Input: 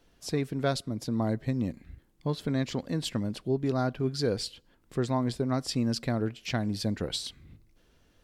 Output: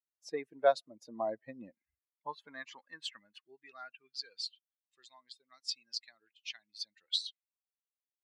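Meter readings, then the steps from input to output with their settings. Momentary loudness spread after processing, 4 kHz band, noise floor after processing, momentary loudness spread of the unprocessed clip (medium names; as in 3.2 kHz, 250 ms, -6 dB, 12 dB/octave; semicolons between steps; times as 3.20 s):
22 LU, -2.5 dB, under -85 dBFS, 6 LU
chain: expander on every frequency bin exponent 2; high-pass sweep 600 Hz -> 3.8 kHz, 1.66–4.61 s; distance through air 97 m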